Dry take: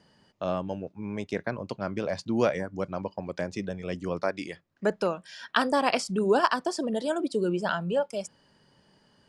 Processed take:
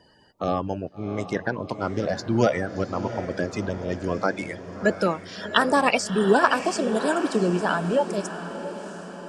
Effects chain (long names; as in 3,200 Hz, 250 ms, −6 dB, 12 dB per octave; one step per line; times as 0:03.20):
spectral magnitudes quantised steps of 30 dB
on a send: feedback delay with all-pass diffusion 687 ms, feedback 54%, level −11 dB
on the sum: level +5 dB